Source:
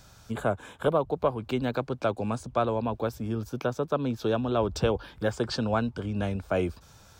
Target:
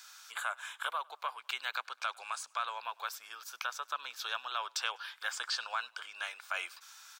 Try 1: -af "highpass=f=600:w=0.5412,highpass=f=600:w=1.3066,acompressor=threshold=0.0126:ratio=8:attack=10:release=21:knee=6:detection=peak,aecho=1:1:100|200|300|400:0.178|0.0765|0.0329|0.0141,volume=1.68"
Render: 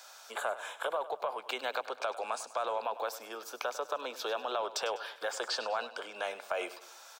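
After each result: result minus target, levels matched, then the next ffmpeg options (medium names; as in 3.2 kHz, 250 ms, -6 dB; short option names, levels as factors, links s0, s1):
500 Hz band +14.5 dB; echo-to-direct +12 dB
-af "highpass=f=1200:w=0.5412,highpass=f=1200:w=1.3066,acompressor=threshold=0.0126:ratio=8:attack=10:release=21:knee=6:detection=peak,aecho=1:1:100|200|300|400:0.178|0.0765|0.0329|0.0141,volume=1.68"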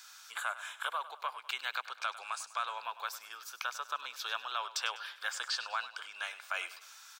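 echo-to-direct +12 dB
-af "highpass=f=1200:w=0.5412,highpass=f=1200:w=1.3066,acompressor=threshold=0.0126:ratio=8:attack=10:release=21:knee=6:detection=peak,aecho=1:1:100|200:0.0447|0.0192,volume=1.68"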